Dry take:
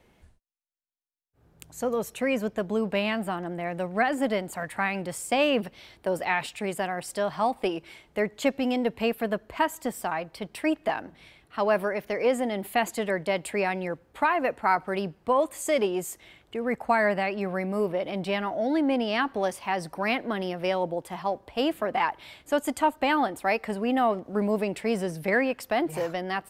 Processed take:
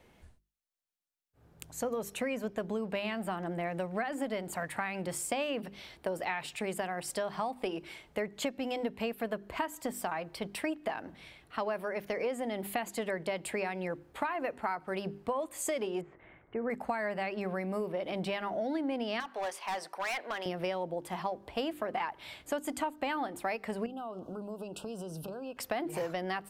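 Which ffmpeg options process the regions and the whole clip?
-filter_complex "[0:a]asettb=1/sr,asplit=3[s0][s1][s2];[s0]atrim=end=16.014[s3];[s1]atrim=start=16.01:end=16.7,asetpts=PTS-STARTPTS,afade=t=in:d=0.004:c=qsin,afade=t=out:st=0.686:d=0.004:c=qsin,lowpass=f=1900:w=0.5412,lowpass=f=1900:w=1.3066,bandreject=f=67.66:t=h:w=4,bandreject=f=135.32:t=h:w=4,bandreject=f=202.98:t=h:w=4,bandreject=f=270.64:t=h:w=4,bandreject=f=338.3:t=h:w=4,bandreject=f=405.96:t=h:w=4,bandreject=f=473.62:t=h:w=4,bandreject=f=541.28:t=h:w=4,bandreject=f=608.94:t=h:w=4,bandreject=f=676.6:t=h:w=4,bandreject=f=744.26:t=h:w=4,bandreject=f=811.92:t=h:w=4,bandreject=f=879.58:t=h:w=4,bandreject=f=947.24:t=h:w=4,bandreject=f=1014.9:t=h:w=4,bandreject=f=1082.56:t=h:w=4,bandreject=f=1150.22:t=h:w=4,bandreject=f=1217.88:t=h:w=4,bandreject=f=1285.54:t=h:w=4,bandreject=f=1353.2:t=h:w=4,bandreject=f=1420.86:t=h:w=4,bandreject=f=1488.52:t=h:w=4,bandreject=f=1556.18:t=h:w=4,bandreject=f=1623.84:t=h:w=4,bandreject=f=1691.5:t=h:w=4,bandreject=f=1759.16:t=h:w=4,bandreject=f=1826.82:t=h:w=4,bandreject=f=1894.48:t=h:w=4,bandreject=f=1962.14:t=h:w=4,bandreject=f=2029.8:t=h:w=4,bandreject=f=2097.46:t=h:w=4,bandreject=f=2165.12:t=h:w=4,bandreject=f=2232.78:t=h:w=4[s4];[s2]atrim=start=16.696[s5];[s3][s4]acrossfade=d=0.004:c1=hsin:c2=qsin[s6];[s6][s5]acrossfade=d=0.004:c1=qsin:c2=hsin,asettb=1/sr,asplit=3[s7][s8][s9];[s7]atrim=end=19.204[s10];[s8]atrim=start=19.2:end=20.46,asetpts=PTS-STARTPTS,afade=t=in:d=0.004:c=qsin,afade=t=out:st=1.256:d=0.004:c=qsin,highpass=700,highshelf=f=9500:g=-9,asoftclip=type=hard:threshold=0.0355[s11];[s9]atrim=start=20.456[s12];[s10][s11]acrossfade=d=0.004:c1=hsin:c2=qsin[s13];[s13][s12]acrossfade=d=0.004:c1=qsin:c2=hsin,asettb=1/sr,asplit=3[s14][s15][s16];[s14]atrim=end=23.864[s17];[s15]atrim=start=23.86:end=25.57,asetpts=PTS-STARTPTS,afade=t=in:d=0.004:c=qsin,afade=t=out:st=1.706:d=0.004:c=qsin,acompressor=threshold=0.0158:ratio=10:attack=3.2:release=140:knee=1:detection=peak,asuperstop=centerf=2000:order=12:qfactor=1.8[s18];[s16]atrim=start=25.566[s19];[s17][s18]acrossfade=d=0.004:c1=hsin:c2=qsin[s20];[s20][s19]acrossfade=d=0.004:c1=qsin:c2=hsin,bandreject=f=50:t=h:w=6,bandreject=f=100:t=h:w=6,bandreject=f=150:t=h:w=6,bandreject=f=200:t=h:w=6,bandreject=f=250:t=h:w=6,bandreject=f=300:t=h:w=6,bandreject=f=350:t=h:w=6,bandreject=f=400:t=h:w=6,acompressor=threshold=0.0282:ratio=6"

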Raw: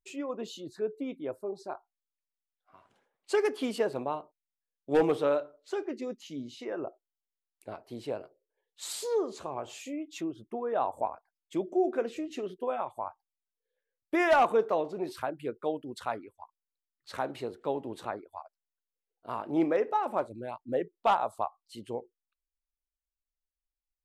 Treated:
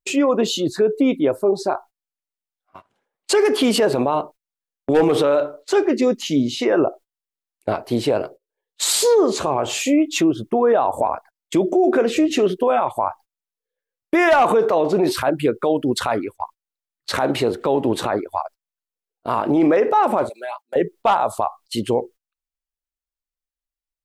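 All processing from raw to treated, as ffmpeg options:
-filter_complex "[0:a]asettb=1/sr,asplit=3[s0][s1][s2];[s0]atrim=end=20.294[s3];[s1]atrim=start=20.29:end=20.76,asetpts=PTS-STARTPTS,afade=t=in:d=0.004:c=qsin,afade=t=out:st=0.466:d=0.004:c=qsin,highpass=f=690:w=0.5412,highpass=f=690:w=1.3066,aecho=1:1:5:0.67,atrim=end_sample=20727,acompressor=threshold=0.00501:ratio=8:attack=3.2:release=140:knee=1:detection=peak[s4];[s2]atrim=start=20.756[s5];[s3][s4]acrossfade=d=0.004:c1=hsin:c2=qsin[s6];[s6][s5]acrossfade=d=0.004:c1=qsin:c2=hsin,agate=range=0.0794:threshold=0.00178:ratio=16:detection=peak,alimiter=level_in=28.2:limit=0.891:release=50:level=0:latency=1,volume=0.398"

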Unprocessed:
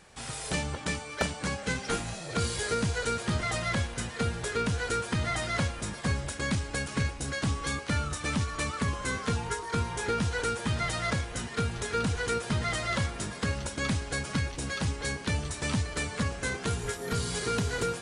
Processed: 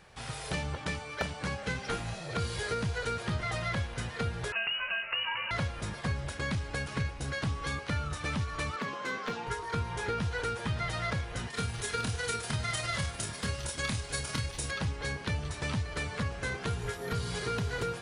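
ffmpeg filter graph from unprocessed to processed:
-filter_complex "[0:a]asettb=1/sr,asplit=3[s0][s1][s2];[s0]atrim=end=4.524[s3];[s1]atrim=start=4.52:end=5.51,asetpts=PTS-STARTPTS,afade=t=in:d=0.004:c=qsin,afade=t=out:st=0.986:d=0.004:c=qsin,highpass=61,lowpass=f=2600:t=q:w=0.5098,lowpass=f=2600:t=q:w=0.6013,lowpass=f=2600:t=q:w=0.9,lowpass=f=2600:t=q:w=2.563,afreqshift=-3000[s4];[s2]atrim=start=5.506[s5];[s3][s4]acrossfade=d=0.004:c1=hsin:c2=qsin[s6];[s6][s5]acrossfade=d=0.004:c1=qsin:c2=hsin,asettb=1/sr,asplit=3[s7][s8][s9];[s7]atrim=end=8.764[s10];[s8]atrim=start=8.76:end=9.47,asetpts=PTS-STARTPTS,afade=t=in:d=0.004:c=qsin,afade=t=out:st=0.706:d=0.004:c=qsin,highpass=f=200:w=0.5412,highpass=f=200:w=1.3066,equalizer=f=10000:w=1.5:g=-12.5,asoftclip=type=hard:threshold=0.0562[s11];[s9]atrim=start=9.466[s12];[s10][s11]acrossfade=d=0.004:c1=hsin:c2=qsin[s13];[s13][s12]acrossfade=d=0.004:c1=qsin:c2=hsin,asettb=1/sr,asplit=3[s14][s15][s16];[s14]atrim=end=11.504[s17];[s15]atrim=start=11.5:end=14.71,asetpts=PTS-STARTPTS,afade=t=in:d=0.004:c=qsin,afade=t=out:st=3.206:d=0.004:c=qsin,aemphasis=mode=production:type=75fm,tremolo=f=20:d=0.61,asplit=2[s18][s19];[s19]adelay=27,volume=0.596[s20];[s18][s20]amix=inputs=2:normalize=0,atrim=end_sample=141561[s21];[s16]atrim=start=14.706[s22];[s17][s21]acrossfade=d=0.004:c1=hsin:c2=qsin[s23];[s23][s22]acrossfade=d=0.004:c1=qsin:c2=hsin,equalizer=f=125:t=o:w=1:g=3,equalizer=f=250:t=o:w=1:g=-5,equalizer=f=8000:t=o:w=1:g=-9,acompressor=threshold=0.0282:ratio=2"

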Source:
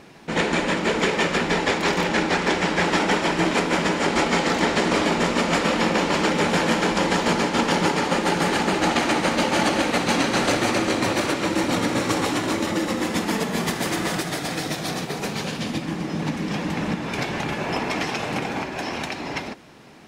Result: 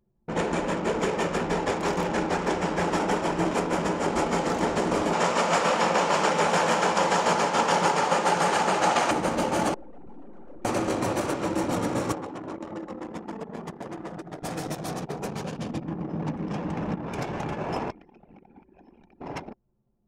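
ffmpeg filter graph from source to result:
-filter_complex "[0:a]asettb=1/sr,asplit=3[s0][s1][s2];[s0]atrim=end=5.134[s3];[s1]atrim=start=5.13:end=9.11,asetpts=PTS-STARTPTS,afade=t=in:d=0.004:c=qsin,afade=t=out:st=3.976:d=0.004:c=qsin,equalizer=f=290:w=1.1:g=-12,acontrast=81,highpass=200,lowpass=7600[s4];[s2]atrim=start=9.106[s5];[s3][s4]acrossfade=d=0.004:c1=hsin:c2=qsin[s6];[s6][s5]acrossfade=d=0.004:c1=qsin:c2=hsin,asettb=1/sr,asplit=3[s7][s8][s9];[s7]atrim=end=9.744[s10];[s8]atrim=start=9.74:end=10.65,asetpts=PTS-STARTPTS,afade=t=in:d=0.004:c=qsin,afade=t=out:st=0.906:d=0.004:c=qsin,lowpass=f=2400:p=1,aeval=exprs='(tanh(50.1*val(0)+0.75)-tanh(0.75))/50.1':c=same[s11];[s9]atrim=start=10.646[s12];[s10][s11]acrossfade=d=0.004:c1=hsin:c2=qsin[s13];[s13][s12]acrossfade=d=0.004:c1=qsin:c2=hsin,asettb=1/sr,asplit=3[s14][s15][s16];[s14]atrim=end=12.124[s17];[s15]atrim=start=12.12:end=14.43,asetpts=PTS-STARTPTS,afade=t=in:d=0.004:c=qsin,afade=t=out:st=2.306:d=0.004:c=qsin,highshelf=f=5400:g=-6,bandreject=f=60:t=h:w=6,bandreject=f=120:t=h:w=6,bandreject=f=180:t=h:w=6,bandreject=f=240:t=h:w=6,bandreject=f=300:t=h:w=6,bandreject=f=360:t=h:w=6,bandreject=f=420:t=h:w=6,bandreject=f=480:t=h:w=6,bandreject=f=540:t=h:w=6,acrossover=split=120|620|5000[s18][s19][s20][s21];[s18]acompressor=threshold=0.00158:ratio=3[s22];[s19]acompressor=threshold=0.0251:ratio=3[s23];[s20]acompressor=threshold=0.02:ratio=3[s24];[s21]acompressor=threshold=0.00631:ratio=3[s25];[s22][s23][s24][s25]amix=inputs=4:normalize=0[s26];[s16]atrim=start=14.426[s27];[s17][s26]acrossfade=d=0.004:c1=hsin:c2=qsin[s28];[s28][s27]acrossfade=d=0.004:c1=qsin:c2=hsin,asettb=1/sr,asplit=3[s29][s30][s31];[s29]atrim=end=17.904[s32];[s30]atrim=start=17.9:end=19.21,asetpts=PTS-STARTPTS,afade=t=in:d=0.004:c=qsin,afade=t=out:st=1.306:d=0.004:c=qsin,lowpass=5900,acrossover=split=400|1700[s33][s34][s35];[s33]acompressor=threshold=0.01:ratio=4[s36];[s34]acompressor=threshold=0.00708:ratio=4[s37];[s35]acompressor=threshold=0.01:ratio=4[s38];[s36][s37][s38]amix=inputs=3:normalize=0[s39];[s31]atrim=start=19.206[s40];[s32][s39]acrossfade=d=0.004:c1=hsin:c2=qsin[s41];[s41][s40]acrossfade=d=0.004:c1=qsin:c2=hsin,anlmdn=63.1,equalizer=f=250:t=o:w=1:g=-4,equalizer=f=2000:t=o:w=1:g=-8,equalizer=f=4000:t=o:w=1:g=-10,volume=0.841"

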